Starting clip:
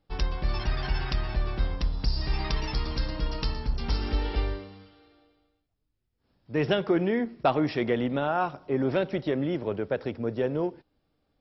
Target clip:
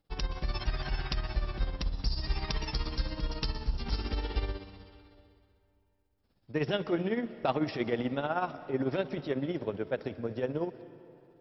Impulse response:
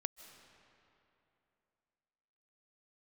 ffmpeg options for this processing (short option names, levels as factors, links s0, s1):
-filter_complex "[0:a]tremolo=f=16:d=0.65,asplit=2[s0][s1];[1:a]atrim=start_sample=2205,highshelf=f=4400:g=10[s2];[s1][s2]afir=irnorm=-1:irlink=0,volume=1.33[s3];[s0][s3]amix=inputs=2:normalize=0,volume=0.376"